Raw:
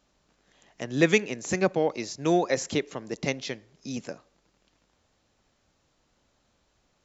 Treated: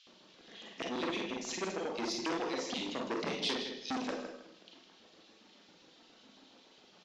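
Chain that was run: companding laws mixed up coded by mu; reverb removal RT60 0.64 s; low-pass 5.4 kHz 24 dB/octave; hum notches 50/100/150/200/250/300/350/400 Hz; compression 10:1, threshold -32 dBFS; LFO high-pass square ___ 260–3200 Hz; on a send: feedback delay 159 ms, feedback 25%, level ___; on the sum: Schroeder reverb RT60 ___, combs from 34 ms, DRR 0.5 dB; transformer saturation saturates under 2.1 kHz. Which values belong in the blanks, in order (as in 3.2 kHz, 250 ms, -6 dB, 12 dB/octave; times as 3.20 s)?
7.3 Hz, -8.5 dB, 0.41 s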